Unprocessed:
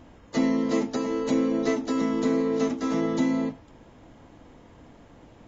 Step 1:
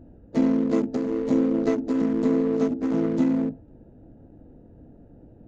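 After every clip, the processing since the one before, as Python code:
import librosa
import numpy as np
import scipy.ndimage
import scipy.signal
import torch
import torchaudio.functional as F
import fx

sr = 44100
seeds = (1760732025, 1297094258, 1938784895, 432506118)

y = fx.wiener(x, sr, points=41)
y = fx.tilt_shelf(y, sr, db=3.5, hz=1300.0)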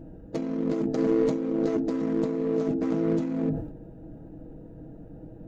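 y = fx.over_compress(x, sr, threshold_db=-27.0, ratio=-1.0)
y = y + 0.52 * np.pad(y, (int(6.3 * sr / 1000.0), 0))[:len(y)]
y = fx.sustainer(y, sr, db_per_s=74.0)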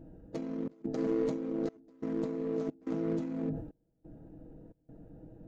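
y = fx.step_gate(x, sr, bpm=89, pattern='xxxx.xxxxx..', floor_db=-24.0, edge_ms=4.5)
y = y * librosa.db_to_amplitude(-7.5)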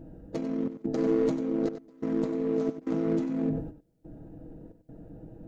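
y = x + 10.0 ** (-11.0 / 20.0) * np.pad(x, (int(95 * sr / 1000.0), 0))[:len(x)]
y = y * librosa.db_to_amplitude(5.0)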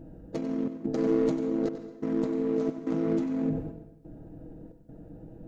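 y = fx.rev_plate(x, sr, seeds[0], rt60_s=0.79, hf_ratio=0.9, predelay_ms=120, drr_db=11.5)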